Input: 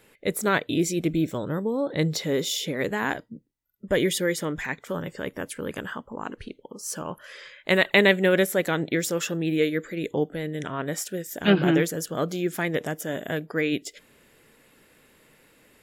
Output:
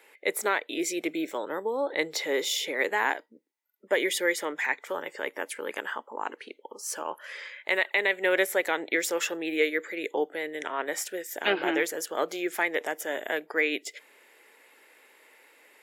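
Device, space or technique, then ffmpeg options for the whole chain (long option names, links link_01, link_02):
laptop speaker: -af "highpass=frequency=350:width=0.5412,highpass=frequency=350:width=1.3066,equalizer=frequency=870:width_type=o:width=0.36:gain=7,equalizer=frequency=2100:width_type=o:width=0.59:gain=7.5,alimiter=limit=-11dB:level=0:latency=1:release=320,volume=-1.5dB"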